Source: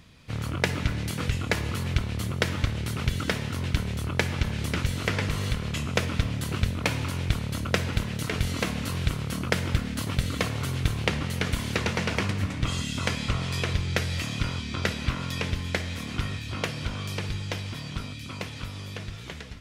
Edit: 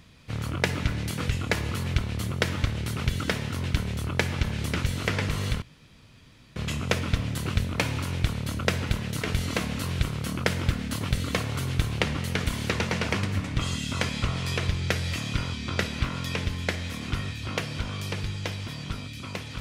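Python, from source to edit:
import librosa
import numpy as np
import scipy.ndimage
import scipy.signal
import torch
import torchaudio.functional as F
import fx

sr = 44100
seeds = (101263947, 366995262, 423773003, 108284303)

y = fx.edit(x, sr, fx.insert_room_tone(at_s=5.62, length_s=0.94), tone=tone)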